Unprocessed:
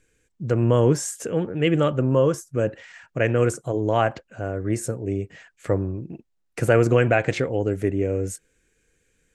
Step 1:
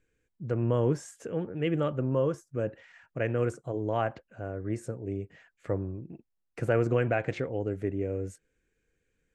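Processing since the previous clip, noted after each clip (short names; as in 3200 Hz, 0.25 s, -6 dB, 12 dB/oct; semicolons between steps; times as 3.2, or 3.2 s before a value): LPF 2500 Hz 6 dB/oct; gain -8 dB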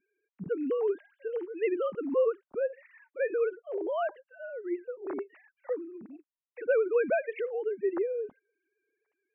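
sine-wave speech; gain -1 dB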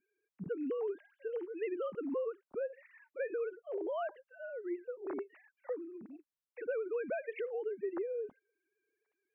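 compressor, threshold -30 dBFS, peak gain reduction 8.5 dB; gain -3.5 dB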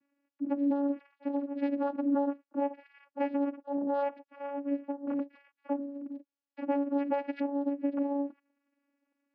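vocoder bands 8, saw 282 Hz; gain +7.5 dB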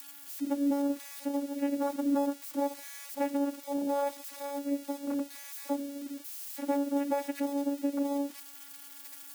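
switching spikes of -33 dBFS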